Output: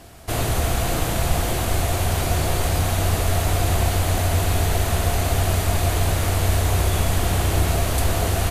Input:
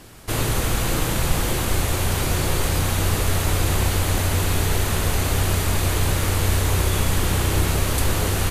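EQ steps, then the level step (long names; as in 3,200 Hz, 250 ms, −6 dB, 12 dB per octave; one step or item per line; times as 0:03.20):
parametric band 76 Hz +10 dB 0.3 octaves
parametric band 690 Hz +12 dB 0.23 octaves
−1.5 dB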